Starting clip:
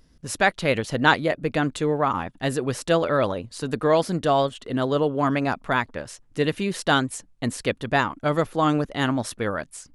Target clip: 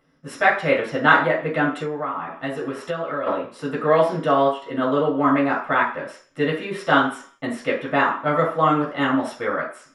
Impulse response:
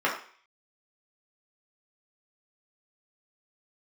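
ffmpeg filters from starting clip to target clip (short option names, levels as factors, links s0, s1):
-filter_complex "[1:a]atrim=start_sample=2205[s0];[0:a][s0]afir=irnorm=-1:irlink=0,asplit=3[s1][s2][s3];[s1]afade=t=out:st=1.82:d=0.02[s4];[s2]acompressor=threshold=0.2:ratio=6,afade=t=in:st=1.82:d=0.02,afade=t=out:st=3.26:d=0.02[s5];[s3]afade=t=in:st=3.26:d=0.02[s6];[s4][s5][s6]amix=inputs=3:normalize=0,volume=0.316"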